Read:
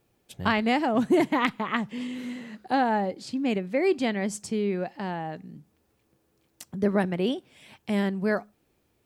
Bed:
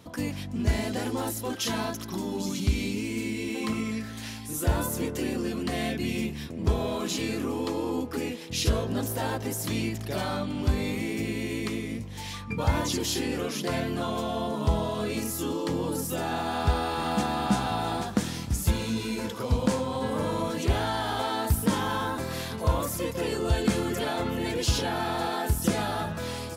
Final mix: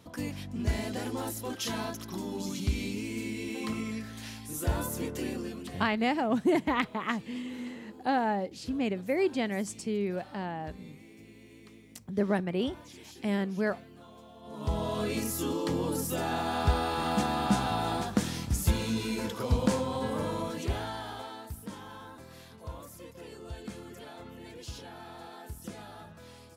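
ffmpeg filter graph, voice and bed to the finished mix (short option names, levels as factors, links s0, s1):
-filter_complex "[0:a]adelay=5350,volume=0.631[s0];[1:a]volume=6.31,afade=t=out:st=5.27:d=0.61:silence=0.133352,afade=t=in:st=14.42:d=0.53:silence=0.0944061,afade=t=out:st=19.75:d=1.73:silence=0.16788[s1];[s0][s1]amix=inputs=2:normalize=0"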